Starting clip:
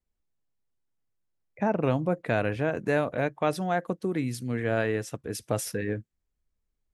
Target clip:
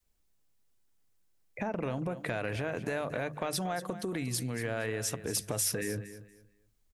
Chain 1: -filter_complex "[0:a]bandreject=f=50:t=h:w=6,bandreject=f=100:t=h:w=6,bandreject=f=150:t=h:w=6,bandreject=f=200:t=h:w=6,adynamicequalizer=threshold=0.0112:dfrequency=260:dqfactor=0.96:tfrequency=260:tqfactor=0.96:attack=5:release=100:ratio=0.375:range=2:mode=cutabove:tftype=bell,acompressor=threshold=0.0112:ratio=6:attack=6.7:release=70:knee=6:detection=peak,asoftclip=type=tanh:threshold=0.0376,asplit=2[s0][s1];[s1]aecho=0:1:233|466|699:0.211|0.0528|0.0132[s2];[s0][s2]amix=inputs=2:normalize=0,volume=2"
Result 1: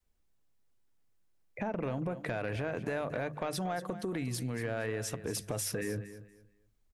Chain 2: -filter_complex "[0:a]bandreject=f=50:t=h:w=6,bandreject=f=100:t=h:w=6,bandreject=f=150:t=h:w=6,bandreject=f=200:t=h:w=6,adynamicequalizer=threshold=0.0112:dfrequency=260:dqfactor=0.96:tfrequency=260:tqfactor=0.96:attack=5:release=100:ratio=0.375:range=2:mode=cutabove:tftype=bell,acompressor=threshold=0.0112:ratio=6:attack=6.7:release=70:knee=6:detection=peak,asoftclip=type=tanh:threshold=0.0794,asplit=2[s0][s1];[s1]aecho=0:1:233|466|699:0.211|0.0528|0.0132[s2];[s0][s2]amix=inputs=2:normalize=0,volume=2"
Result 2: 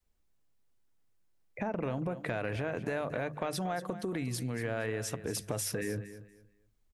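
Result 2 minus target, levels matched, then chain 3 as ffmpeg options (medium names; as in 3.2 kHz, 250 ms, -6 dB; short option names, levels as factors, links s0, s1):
8 kHz band -4.5 dB
-filter_complex "[0:a]bandreject=f=50:t=h:w=6,bandreject=f=100:t=h:w=6,bandreject=f=150:t=h:w=6,bandreject=f=200:t=h:w=6,adynamicequalizer=threshold=0.0112:dfrequency=260:dqfactor=0.96:tfrequency=260:tqfactor=0.96:attack=5:release=100:ratio=0.375:range=2:mode=cutabove:tftype=bell,acompressor=threshold=0.0112:ratio=6:attack=6.7:release=70:knee=6:detection=peak,highshelf=f=3500:g=7,asoftclip=type=tanh:threshold=0.0794,asplit=2[s0][s1];[s1]aecho=0:1:233|466|699:0.211|0.0528|0.0132[s2];[s0][s2]amix=inputs=2:normalize=0,volume=2"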